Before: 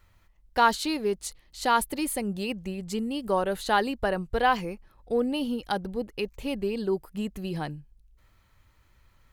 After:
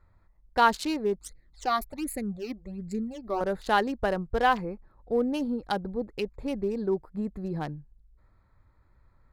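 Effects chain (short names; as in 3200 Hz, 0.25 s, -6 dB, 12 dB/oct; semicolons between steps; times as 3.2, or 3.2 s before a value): Wiener smoothing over 15 samples; 1.18–3.41 phaser stages 12, 1.3 Hz, lowest notch 150–1100 Hz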